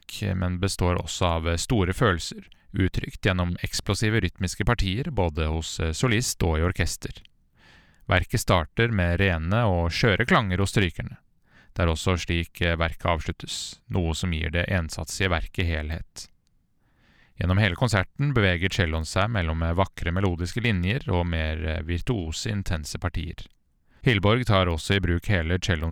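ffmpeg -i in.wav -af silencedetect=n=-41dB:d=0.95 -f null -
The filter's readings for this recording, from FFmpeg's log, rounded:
silence_start: 16.26
silence_end: 17.40 | silence_duration: 1.14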